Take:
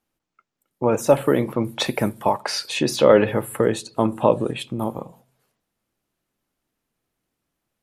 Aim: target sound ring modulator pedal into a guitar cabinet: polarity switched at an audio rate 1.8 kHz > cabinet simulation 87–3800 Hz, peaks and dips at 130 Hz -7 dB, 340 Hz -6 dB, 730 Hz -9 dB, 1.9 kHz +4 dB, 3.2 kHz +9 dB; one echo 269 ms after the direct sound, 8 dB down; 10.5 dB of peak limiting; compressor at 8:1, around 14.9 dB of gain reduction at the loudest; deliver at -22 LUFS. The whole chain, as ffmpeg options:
-af "acompressor=threshold=0.0631:ratio=8,alimiter=limit=0.0841:level=0:latency=1,aecho=1:1:269:0.398,aeval=exprs='val(0)*sgn(sin(2*PI*1800*n/s))':c=same,highpass=87,equalizer=f=130:t=q:w=4:g=-7,equalizer=f=340:t=q:w=4:g=-6,equalizer=f=730:t=q:w=4:g=-9,equalizer=f=1900:t=q:w=4:g=4,equalizer=f=3200:t=q:w=4:g=9,lowpass=f=3800:w=0.5412,lowpass=f=3800:w=1.3066,volume=2.51"

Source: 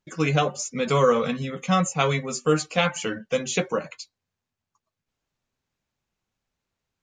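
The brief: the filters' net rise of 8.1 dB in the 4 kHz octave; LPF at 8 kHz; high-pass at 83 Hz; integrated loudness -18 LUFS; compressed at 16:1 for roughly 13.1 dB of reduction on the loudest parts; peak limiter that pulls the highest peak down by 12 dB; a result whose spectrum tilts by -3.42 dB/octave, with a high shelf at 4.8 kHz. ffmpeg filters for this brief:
-af "highpass=83,lowpass=8000,equalizer=f=4000:t=o:g=8.5,highshelf=f=4800:g=5,acompressor=threshold=0.0447:ratio=16,volume=7.94,alimiter=limit=0.398:level=0:latency=1"

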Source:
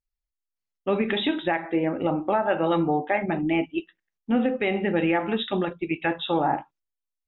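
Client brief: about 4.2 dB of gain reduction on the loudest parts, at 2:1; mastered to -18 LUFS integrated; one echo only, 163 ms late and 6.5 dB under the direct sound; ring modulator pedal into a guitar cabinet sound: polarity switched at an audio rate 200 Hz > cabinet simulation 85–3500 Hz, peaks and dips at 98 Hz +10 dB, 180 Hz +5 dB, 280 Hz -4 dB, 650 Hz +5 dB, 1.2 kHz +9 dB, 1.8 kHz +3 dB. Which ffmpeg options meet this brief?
-af "acompressor=threshold=0.0501:ratio=2,aecho=1:1:163:0.473,aeval=exprs='val(0)*sgn(sin(2*PI*200*n/s))':c=same,highpass=85,equalizer=f=98:t=q:w=4:g=10,equalizer=f=180:t=q:w=4:g=5,equalizer=f=280:t=q:w=4:g=-4,equalizer=f=650:t=q:w=4:g=5,equalizer=f=1200:t=q:w=4:g=9,equalizer=f=1800:t=q:w=4:g=3,lowpass=f=3500:w=0.5412,lowpass=f=3500:w=1.3066,volume=2.37"

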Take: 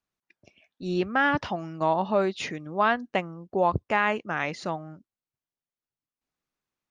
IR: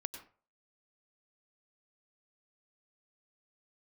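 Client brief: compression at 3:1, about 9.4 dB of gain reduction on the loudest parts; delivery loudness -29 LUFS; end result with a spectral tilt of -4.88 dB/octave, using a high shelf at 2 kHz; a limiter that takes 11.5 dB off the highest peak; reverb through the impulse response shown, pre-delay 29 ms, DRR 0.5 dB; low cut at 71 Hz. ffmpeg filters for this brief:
-filter_complex "[0:a]highpass=71,highshelf=f=2000:g=-7.5,acompressor=threshold=0.0251:ratio=3,alimiter=level_in=2.11:limit=0.0631:level=0:latency=1,volume=0.473,asplit=2[s0][s1];[1:a]atrim=start_sample=2205,adelay=29[s2];[s1][s2]afir=irnorm=-1:irlink=0,volume=1.12[s3];[s0][s3]amix=inputs=2:normalize=0,volume=2.82"

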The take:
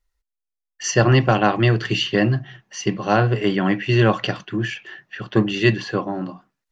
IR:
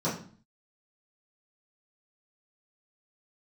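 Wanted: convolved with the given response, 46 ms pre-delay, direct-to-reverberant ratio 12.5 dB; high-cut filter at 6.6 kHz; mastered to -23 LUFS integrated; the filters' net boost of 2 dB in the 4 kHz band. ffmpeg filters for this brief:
-filter_complex "[0:a]lowpass=6600,equalizer=f=4000:t=o:g=3.5,asplit=2[s0][s1];[1:a]atrim=start_sample=2205,adelay=46[s2];[s1][s2]afir=irnorm=-1:irlink=0,volume=0.0794[s3];[s0][s3]amix=inputs=2:normalize=0,volume=0.631"

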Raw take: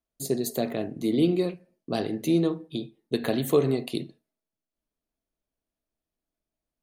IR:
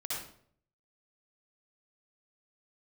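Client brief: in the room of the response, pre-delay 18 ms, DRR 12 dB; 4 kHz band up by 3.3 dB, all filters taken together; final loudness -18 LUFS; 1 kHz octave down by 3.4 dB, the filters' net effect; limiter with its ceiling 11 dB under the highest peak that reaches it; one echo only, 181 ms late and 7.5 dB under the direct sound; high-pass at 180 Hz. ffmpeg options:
-filter_complex "[0:a]highpass=180,equalizer=f=1000:t=o:g=-5.5,equalizer=f=4000:t=o:g=4,alimiter=limit=0.0794:level=0:latency=1,aecho=1:1:181:0.422,asplit=2[s0][s1];[1:a]atrim=start_sample=2205,adelay=18[s2];[s1][s2]afir=irnorm=-1:irlink=0,volume=0.188[s3];[s0][s3]amix=inputs=2:normalize=0,volume=5.01"

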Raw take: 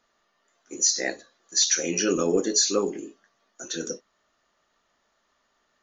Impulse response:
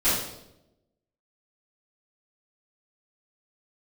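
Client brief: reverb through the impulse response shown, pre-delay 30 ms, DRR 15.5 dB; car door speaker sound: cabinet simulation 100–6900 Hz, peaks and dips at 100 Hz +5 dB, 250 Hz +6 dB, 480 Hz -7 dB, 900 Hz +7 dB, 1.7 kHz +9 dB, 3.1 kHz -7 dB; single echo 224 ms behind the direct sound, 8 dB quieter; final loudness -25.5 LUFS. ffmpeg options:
-filter_complex "[0:a]aecho=1:1:224:0.398,asplit=2[s0][s1];[1:a]atrim=start_sample=2205,adelay=30[s2];[s1][s2]afir=irnorm=-1:irlink=0,volume=0.0316[s3];[s0][s3]amix=inputs=2:normalize=0,highpass=100,equalizer=f=100:t=q:w=4:g=5,equalizer=f=250:t=q:w=4:g=6,equalizer=f=480:t=q:w=4:g=-7,equalizer=f=900:t=q:w=4:g=7,equalizer=f=1700:t=q:w=4:g=9,equalizer=f=3100:t=q:w=4:g=-7,lowpass=f=6900:w=0.5412,lowpass=f=6900:w=1.3066,volume=0.841"

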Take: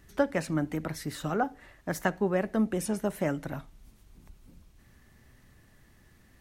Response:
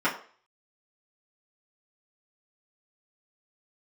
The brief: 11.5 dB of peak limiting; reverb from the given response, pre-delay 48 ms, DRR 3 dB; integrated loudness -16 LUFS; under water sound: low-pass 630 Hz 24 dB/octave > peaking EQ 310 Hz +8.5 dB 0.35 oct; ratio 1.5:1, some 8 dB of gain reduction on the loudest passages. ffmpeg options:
-filter_complex "[0:a]acompressor=threshold=0.00631:ratio=1.5,alimiter=level_in=2.37:limit=0.0631:level=0:latency=1,volume=0.422,asplit=2[s0][s1];[1:a]atrim=start_sample=2205,adelay=48[s2];[s1][s2]afir=irnorm=-1:irlink=0,volume=0.141[s3];[s0][s3]amix=inputs=2:normalize=0,lowpass=f=630:w=0.5412,lowpass=f=630:w=1.3066,equalizer=f=310:t=o:w=0.35:g=8.5,volume=13.3"

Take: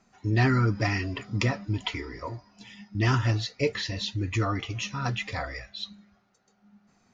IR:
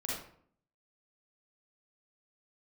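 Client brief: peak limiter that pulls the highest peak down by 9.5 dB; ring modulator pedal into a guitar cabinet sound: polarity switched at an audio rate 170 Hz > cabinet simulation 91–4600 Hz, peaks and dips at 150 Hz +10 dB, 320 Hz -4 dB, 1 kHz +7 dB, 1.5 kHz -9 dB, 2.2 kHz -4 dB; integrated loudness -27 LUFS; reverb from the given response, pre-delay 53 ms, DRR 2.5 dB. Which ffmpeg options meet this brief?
-filter_complex "[0:a]alimiter=limit=0.112:level=0:latency=1,asplit=2[s0][s1];[1:a]atrim=start_sample=2205,adelay=53[s2];[s1][s2]afir=irnorm=-1:irlink=0,volume=0.531[s3];[s0][s3]amix=inputs=2:normalize=0,aeval=exprs='val(0)*sgn(sin(2*PI*170*n/s))':c=same,highpass=91,equalizer=f=150:t=q:w=4:g=10,equalizer=f=320:t=q:w=4:g=-4,equalizer=f=1000:t=q:w=4:g=7,equalizer=f=1500:t=q:w=4:g=-9,equalizer=f=2200:t=q:w=4:g=-4,lowpass=f=4600:w=0.5412,lowpass=f=4600:w=1.3066,volume=1.33"

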